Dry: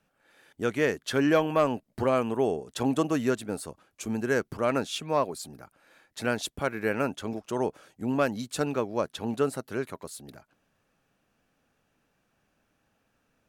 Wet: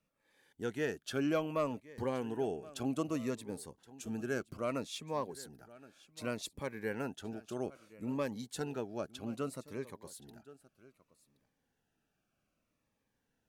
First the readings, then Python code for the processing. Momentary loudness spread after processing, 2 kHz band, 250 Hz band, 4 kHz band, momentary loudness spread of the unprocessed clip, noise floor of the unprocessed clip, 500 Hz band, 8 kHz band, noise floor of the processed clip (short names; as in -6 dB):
15 LU, -11.5 dB, -9.0 dB, -9.5 dB, 11 LU, -74 dBFS, -10.5 dB, -8.5 dB, -83 dBFS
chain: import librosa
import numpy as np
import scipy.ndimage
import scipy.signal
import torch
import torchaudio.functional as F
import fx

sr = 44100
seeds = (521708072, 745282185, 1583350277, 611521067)

p1 = x + fx.echo_single(x, sr, ms=1072, db=-19.5, dry=0)
p2 = fx.notch_cascade(p1, sr, direction='falling', hz=0.63)
y = p2 * librosa.db_to_amplitude(-8.5)